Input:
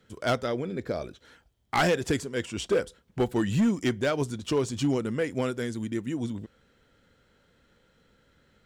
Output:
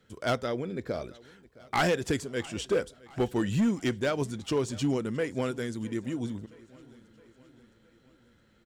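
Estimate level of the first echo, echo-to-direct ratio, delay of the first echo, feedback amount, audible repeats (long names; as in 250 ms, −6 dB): −22.5 dB, −21.0 dB, 665 ms, 58%, 3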